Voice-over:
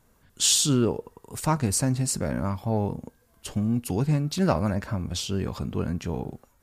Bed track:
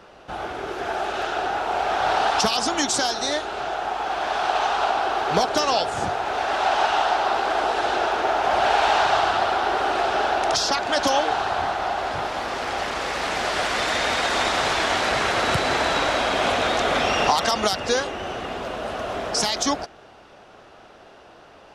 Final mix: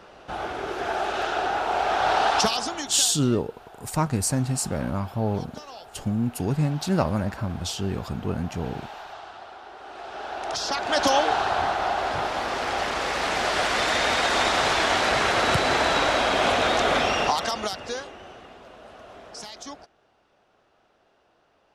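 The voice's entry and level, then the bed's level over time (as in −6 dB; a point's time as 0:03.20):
2.50 s, 0.0 dB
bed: 0:02.43 −0.5 dB
0:03.29 −21 dB
0:09.76 −21 dB
0:11.01 0 dB
0:16.92 0 dB
0:18.58 −16.5 dB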